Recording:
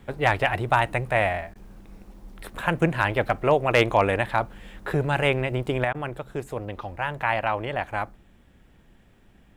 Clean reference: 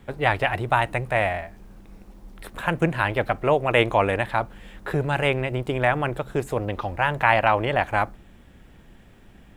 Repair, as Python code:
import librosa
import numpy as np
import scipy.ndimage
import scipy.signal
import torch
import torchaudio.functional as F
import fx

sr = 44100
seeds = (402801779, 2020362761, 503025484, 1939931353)

y = fx.fix_declip(x, sr, threshold_db=-8.0)
y = fx.fix_interpolate(y, sr, at_s=(1.54, 5.93), length_ms=13.0)
y = fx.fix_level(y, sr, at_s=5.84, step_db=6.0)